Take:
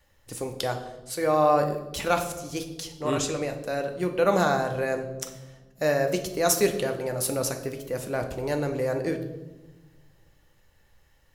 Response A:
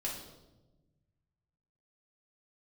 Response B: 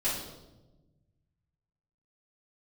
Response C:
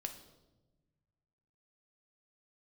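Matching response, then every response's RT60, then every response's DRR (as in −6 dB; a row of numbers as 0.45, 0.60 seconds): C; 1.1, 1.1, 1.1 seconds; −4.5, −11.5, 4.5 decibels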